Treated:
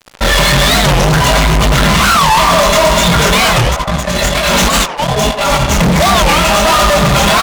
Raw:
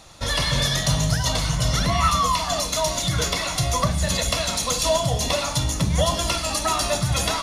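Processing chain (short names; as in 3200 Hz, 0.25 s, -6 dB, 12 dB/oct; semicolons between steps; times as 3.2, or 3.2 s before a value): median filter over 9 samples; Bessel low-pass 5200 Hz; high shelf 2200 Hz +7 dB; comb 5 ms, depth 99%; 3.61–5.73 negative-ratio compressor -28 dBFS, ratio -0.5; chorus 1.3 Hz, delay 17.5 ms, depth 7.2 ms; fuzz box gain 35 dB, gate -42 dBFS; narrowing echo 93 ms, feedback 76%, band-pass 850 Hz, level -7.5 dB; record warp 45 rpm, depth 250 cents; gain +5 dB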